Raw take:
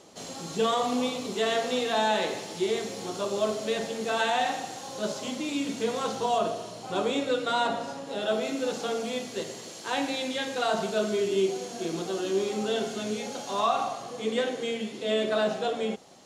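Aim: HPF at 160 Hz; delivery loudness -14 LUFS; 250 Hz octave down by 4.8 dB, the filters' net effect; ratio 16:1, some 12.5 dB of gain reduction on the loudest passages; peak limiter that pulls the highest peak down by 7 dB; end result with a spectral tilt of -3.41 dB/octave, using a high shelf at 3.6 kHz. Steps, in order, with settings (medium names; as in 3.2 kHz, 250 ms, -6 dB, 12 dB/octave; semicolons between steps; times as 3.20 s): high-pass 160 Hz; peaking EQ 250 Hz -5 dB; treble shelf 3.6 kHz -7.5 dB; compression 16:1, threshold -34 dBFS; trim +26 dB; peak limiter -4.5 dBFS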